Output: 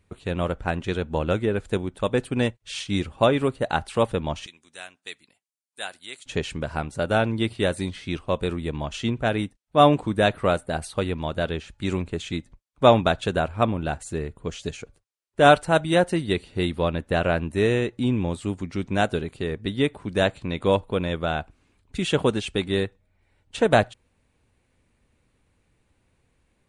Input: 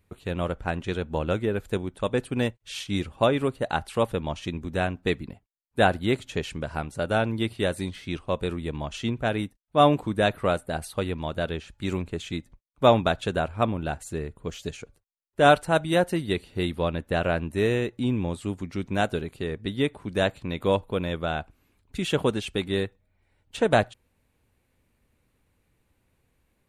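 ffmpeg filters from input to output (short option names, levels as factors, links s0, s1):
-filter_complex "[0:a]asettb=1/sr,asplit=3[s0][s1][s2];[s0]atrim=end=4.464[s3];[s1]atrim=start=4.46:end=6.26,asetpts=PTS-STARTPTS,afade=t=in:d=0.004:c=qsin,afade=t=out:st=1.796:d=0.004:c=qsin,aderivative[s4];[s2]atrim=start=6.256[s5];[s3][s4]acrossfade=d=0.004:c1=hsin:c2=qsin[s6];[s6][s5]acrossfade=d=0.004:c1=qsin:c2=hsin,volume=1.33" -ar 22050 -c:a libvorbis -b:a 64k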